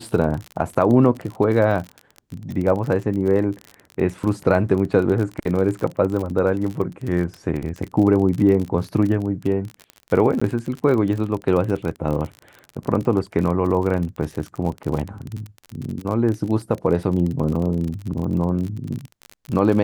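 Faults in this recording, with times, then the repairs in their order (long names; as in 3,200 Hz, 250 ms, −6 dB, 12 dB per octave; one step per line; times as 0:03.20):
surface crackle 40 per second −26 dBFS
0:10.40–0:10.41: drop-out 15 ms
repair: click removal
repair the gap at 0:10.40, 15 ms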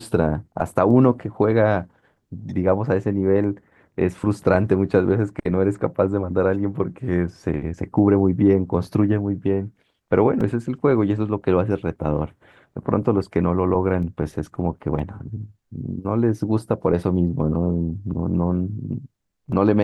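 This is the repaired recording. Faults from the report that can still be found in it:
none of them is left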